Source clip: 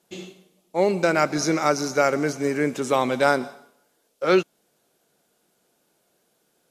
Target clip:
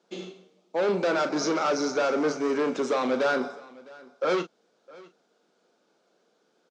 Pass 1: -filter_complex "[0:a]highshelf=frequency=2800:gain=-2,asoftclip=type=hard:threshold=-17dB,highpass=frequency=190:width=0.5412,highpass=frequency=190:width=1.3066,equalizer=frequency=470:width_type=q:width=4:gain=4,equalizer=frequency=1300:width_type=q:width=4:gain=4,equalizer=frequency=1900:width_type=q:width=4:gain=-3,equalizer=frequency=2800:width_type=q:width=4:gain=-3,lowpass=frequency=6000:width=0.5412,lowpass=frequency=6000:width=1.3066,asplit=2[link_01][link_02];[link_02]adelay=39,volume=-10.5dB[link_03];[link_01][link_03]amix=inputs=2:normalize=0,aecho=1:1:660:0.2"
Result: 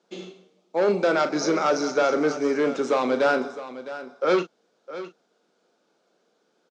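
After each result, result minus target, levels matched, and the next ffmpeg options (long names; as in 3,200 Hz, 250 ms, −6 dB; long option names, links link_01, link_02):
echo-to-direct +8.5 dB; hard clipping: distortion −5 dB
-filter_complex "[0:a]highshelf=frequency=2800:gain=-2,asoftclip=type=hard:threshold=-17dB,highpass=frequency=190:width=0.5412,highpass=frequency=190:width=1.3066,equalizer=frequency=470:width_type=q:width=4:gain=4,equalizer=frequency=1300:width_type=q:width=4:gain=4,equalizer=frequency=1900:width_type=q:width=4:gain=-3,equalizer=frequency=2800:width_type=q:width=4:gain=-3,lowpass=frequency=6000:width=0.5412,lowpass=frequency=6000:width=1.3066,asplit=2[link_01][link_02];[link_02]adelay=39,volume=-10.5dB[link_03];[link_01][link_03]amix=inputs=2:normalize=0,aecho=1:1:660:0.075"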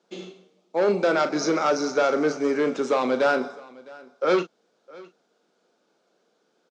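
hard clipping: distortion −5 dB
-filter_complex "[0:a]highshelf=frequency=2800:gain=-2,asoftclip=type=hard:threshold=-23dB,highpass=frequency=190:width=0.5412,highpass=frequency=190:width=1.3066,equalizer=frequency=470:width_type=q:width=4:gain=4,equalizer=frequency=1300:width_type=q:width=4:gain=4,equalizer=frequency=1900:width_type=q:width=4:gain=-3,equalizer=frequency=2800:width_type=q:width=4:gain=-3,lowpass=frequency=6000:width=0.5412,lowpass=frequency=6000:width=1.3066,asplit=2[link_01][link_02];[link_02]adelay=39,volume=-10.5dB[link_03];[link_01][link_03]amix=inputs=2:normalize=0,aecho=1:1:660:0.075"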